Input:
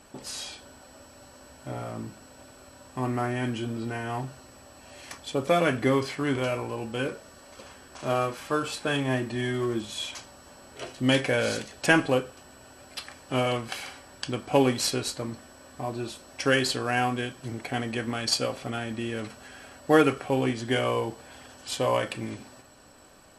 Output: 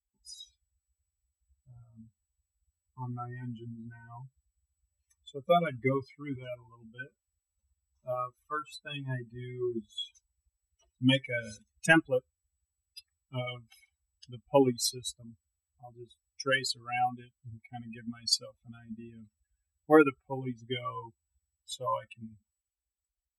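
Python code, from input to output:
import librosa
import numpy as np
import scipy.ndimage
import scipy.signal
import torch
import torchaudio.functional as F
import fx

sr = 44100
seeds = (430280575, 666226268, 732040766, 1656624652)

y = fx.bin_expand(x, sr, power=3.0)
y = F.gain(torch.from_numpy(y), 2.0).numpy()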